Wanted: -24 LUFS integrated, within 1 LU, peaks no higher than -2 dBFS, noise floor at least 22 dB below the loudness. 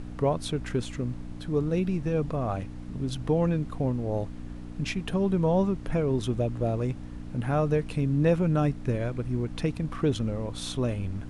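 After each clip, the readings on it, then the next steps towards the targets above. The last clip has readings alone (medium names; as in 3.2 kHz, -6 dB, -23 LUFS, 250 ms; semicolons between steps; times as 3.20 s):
hum 60 Hz; highest harmonic 300 Hz; hum level -40 dBFS; noise floor -39 dBFS; noise floor target -51 dBFS; loudness -28.5 LUFS; peak level -11.5 dBFS; loudness target -24.0 LUFS
-> de-hum 60 Hz, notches 5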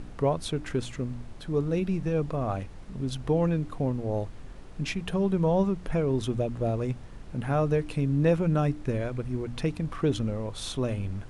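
hum not found; noise floor -43 dBFS; noise floor target -51 dBFS
-> noise print and reduce 8 dB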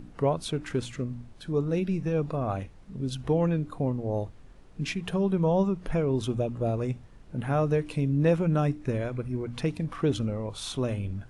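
noise floor -50 dBFS; noise floor target -51 dBFS
-> noise print and reduce 6 dB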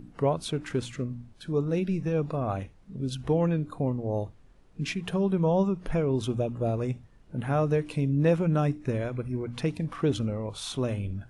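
noise floor -55 dBFS; loudness -29.0 LUFS; peak level -12.0 dBFS; loudness target -24.0 LUFS
-> trim +5 dB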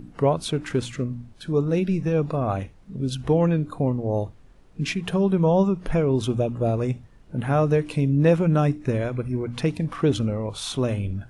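loudness -24.0 LUFS; peak level -7.0 dBFS; noise floor -50 dBFS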